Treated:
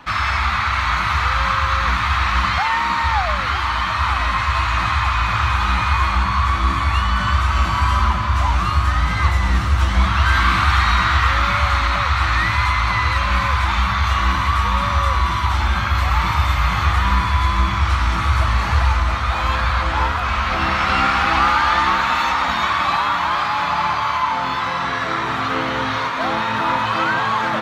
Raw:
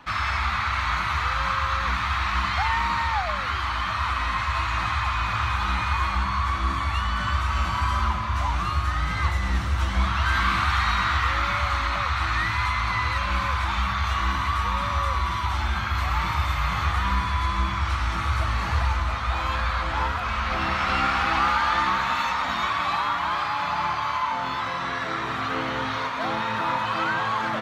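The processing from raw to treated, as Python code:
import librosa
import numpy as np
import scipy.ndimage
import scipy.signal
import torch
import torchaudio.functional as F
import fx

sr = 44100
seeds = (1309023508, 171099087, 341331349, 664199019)

p1 = fx.cheby1_highpass(x, sr, hz=180.0, order=2, at=(2.58, 3.04))
p2 = p1 + fx.echo_single(p1, sr, ms=952, db=-11.0, dry=0)
y = F.gain(torch.from_numpy(p2), 6.0).numpy()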